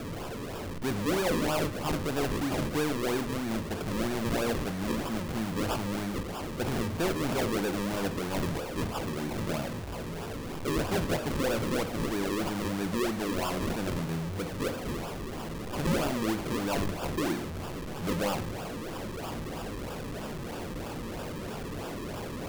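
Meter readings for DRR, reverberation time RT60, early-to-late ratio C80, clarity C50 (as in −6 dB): 10.0 dB, 0.45 s, 20.0 dB, 15.0 dB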